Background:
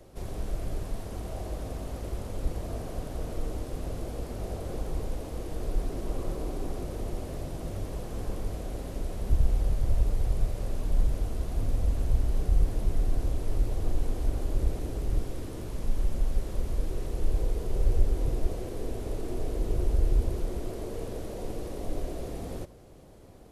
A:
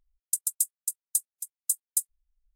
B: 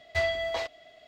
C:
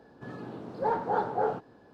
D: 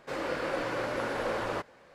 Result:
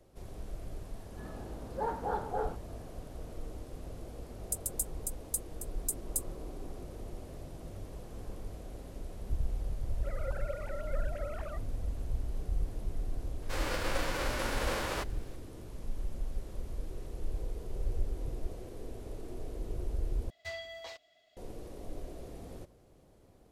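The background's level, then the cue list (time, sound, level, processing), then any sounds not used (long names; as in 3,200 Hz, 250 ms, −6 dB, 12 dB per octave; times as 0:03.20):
background −9.5 dB
0:00.96: mix in C −6.5 dB
0:04.19: mix in A −8 dB
0:09.96: mix in D −9.5 dB + three sine waves on the formant tracks
0:13.42: mix in D −3 dB + spectral envelope flattened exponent 0.6
0:20.30: overwrite with B −16 dB + high-shelf EQ 3,600 Hz +11 dB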